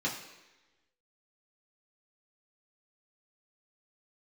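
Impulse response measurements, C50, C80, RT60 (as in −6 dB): 7.0 dB, 9.0 dB, 1.1 s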